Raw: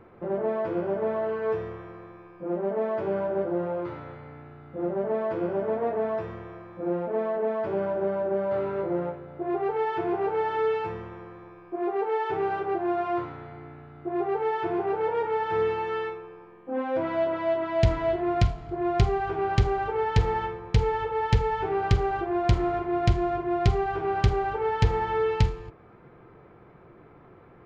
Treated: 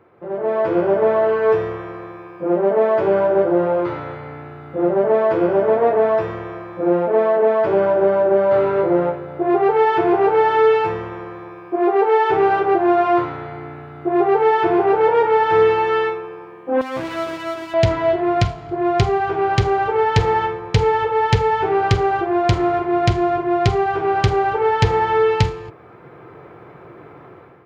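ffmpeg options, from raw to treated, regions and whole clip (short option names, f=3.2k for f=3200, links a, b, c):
-filter_complex "[0:a]asettb=1/sr,asplit=3[a][b][c];[a]atrim=end=16.814[d];[b]atrim=start=16.81:end=17.74,asetpts=PTS-STARTPTS,afade=t=in:d=0.004:c=qsin,afade=t=out:st=0.926:d=0.004:c=qsin,aeval=exprs='max(val(0),0)':c=same,equalizer=f=740:t=o:w=2.5:g=-7.5[e];[c]atrim=start=17.736[f];[d][e]acrossfade=d=0.004:c1=hsin:c2=qsin[g];[g][f]acrossfade=d=0.004:c1=qsin:c2=hsin,highpass=110,equalizer=f=210:t=o:w=0.62:g=-7,dynaudnorm=f=200:g=5:m=12.5dB"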